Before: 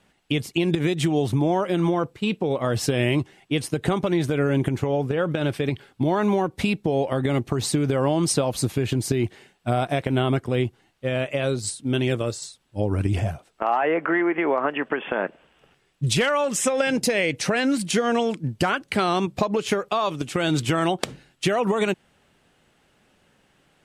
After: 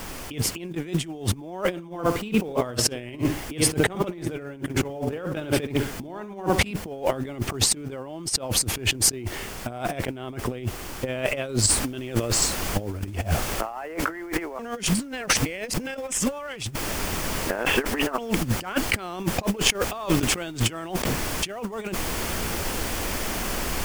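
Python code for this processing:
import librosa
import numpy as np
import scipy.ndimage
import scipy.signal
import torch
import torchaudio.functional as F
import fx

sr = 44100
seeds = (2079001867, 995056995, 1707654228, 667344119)

y = fx.echo_filtered(x, sr, ms=65, feedback_pct=33, hz=2500.0, wet_db=-9.5, at=(1.7, 6.71), fade=0.02)
y = fx.noise_floor_step(y, sr, seeds[0], at_s=11.68, before_db=-49, after_db=-41, tilt_db=3.0)
y = fx.edit(y, sr, fx.reverse_span(start_s=14.59, length_s=3.59), tone=tone)
y = fx.peak_eq(y, sr, hz=3900.0, db=-6.5, octaves=0.2)
y = fx.over_compress(y, sr, threshold_db=-30.0, ratio=-0.5)
y = fx.peak_eq(y, sr, hz=140.0, db=-5.5, octaves=0.44)
y = F.gain(torch.from_numpy(y), 5.5).numpy()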